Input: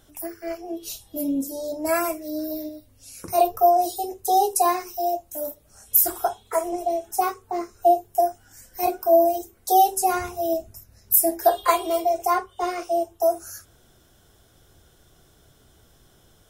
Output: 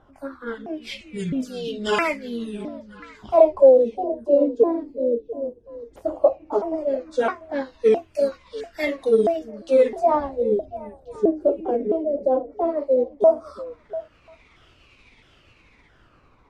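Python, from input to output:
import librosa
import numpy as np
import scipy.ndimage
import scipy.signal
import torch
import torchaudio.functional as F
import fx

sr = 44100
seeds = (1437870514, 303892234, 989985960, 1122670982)

p1 = fx.pitch_ramps(x, sr, semitones=-8.5, every_ms=662)
p2 = fx.high_shelf(p1, sr, hz=2200.0, db=11.5)
p3 = 10.0 ** (-2.0 / 20.0) * np.tanh(p2 / 10.0 ** (-2.0 / 20.0))
p4 = fx.filter_lfo_lowpass(p3, sr, shape='sine', hz=0.15, low_hz=390.0, high_hz=2500.0, q=2.3)
p5 = fx.dynamic_eq(p4, sr, hz=2900.0, q=1.1, threshold_db=-43.0, ratio=4.0, max_db=4)
y = p5 + fx.echo_stepped(p5, sr, ms=346, hz=220.0, octaves=1.4, feedback_pct=70, wet_db=-12, dry=0)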